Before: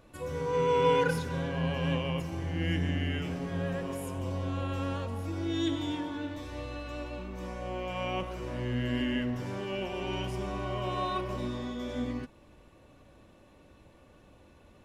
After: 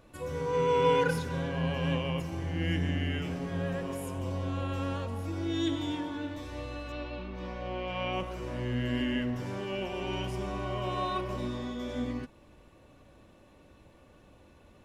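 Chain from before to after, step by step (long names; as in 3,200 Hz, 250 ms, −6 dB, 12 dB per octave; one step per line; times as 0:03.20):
0:06.92–0:08.13: high shelf with overshoot 5,900 Hz −13.5 dB, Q 1.5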